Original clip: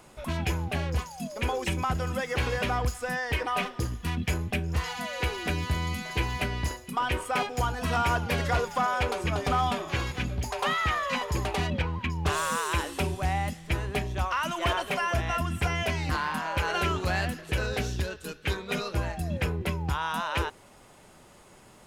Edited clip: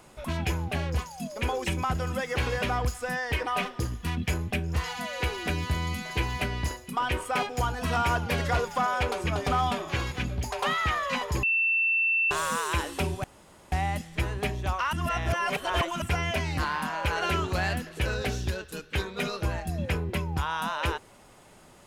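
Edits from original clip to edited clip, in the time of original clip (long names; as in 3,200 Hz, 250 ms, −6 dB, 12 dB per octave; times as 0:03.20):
0:11.43–0:12.31: beep over 2,680 Hz −21.5 dBFS
0:13.24: splice in room tone 0.48 s
0:14.45–0:15.54: reverse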